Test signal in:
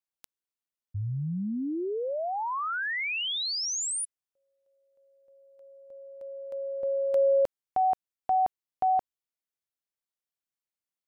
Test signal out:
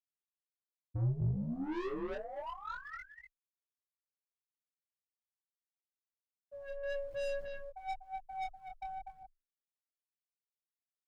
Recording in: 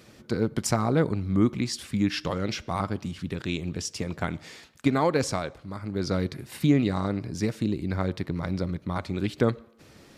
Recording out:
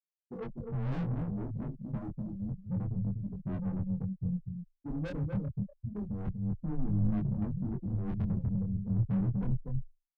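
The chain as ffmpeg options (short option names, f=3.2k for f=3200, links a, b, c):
-filter_complex "[0:a]equalizer=f=4.1k:t=o:w=0.49:g=-10.5,acrossover=split=420[a][b];[b]acompressor=threshold=-37dB:ratio=12:attack=11:release=63:knee=1:detection=rms[c];[a][c]amix=inputs=2:normalize=0,highpass=76,aeval=exprs='0.282*(cos(1*acos(clip(val(0)/0.282,-1,1)))-cos(1*PI/2))+0.00224*(cos(3*acos(clip(val(0)/0.282,-1,1)))-cos(3*PI/2))+0.112*(cos(5*acos(clip(val(0)/0.282,-1,1)))-cos(5*PI/2))':c=same,afftfilt=real='re*gte(hypot(re,im),0.501)':imag='im*gte(hypot(re,im),0.501)':win_size=1024:overlap=0.75,aphaser=in_gain=1:out_gain=1:delay=2.1:decay=0.73:speed=1.1:type=sinusoidal,asplit=2[d][e];[e]aecho=0:1:245:0.398[f];[d][f]amix=inputs=2:normalize=0,aeval=exprs='(tanh(17.8*val(0)+0.1)-tanh(0.1))/17.8':c=same,afreqshift=13,flanger=delay=19.5:depth=6.4:speed=0.28,asubboost=boost=4.5:cutoff=180,volume=-7.5dB"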